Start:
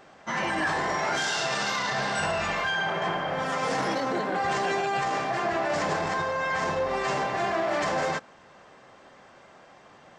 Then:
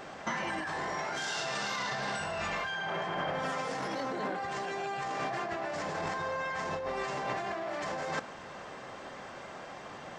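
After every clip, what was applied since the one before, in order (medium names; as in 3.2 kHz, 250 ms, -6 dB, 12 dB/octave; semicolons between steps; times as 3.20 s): compressor with a negative ratio -35 dBFS, ratio -1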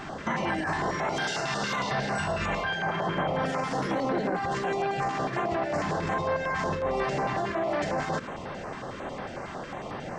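tilt EQ -1.5 dB/octave; peak limiter -27 dBFS, peak gain reduction 7.5 dB; step-sequenced notch 11 Hz 520–7200 Hz; trim +8.5 dB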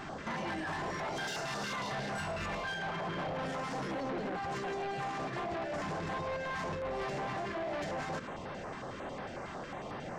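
saturation -29 dBFS, distortion -11 dB; trim -4 dB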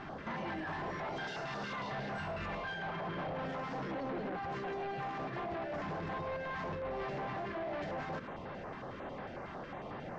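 distance through air 180 m; trim -1.5 dB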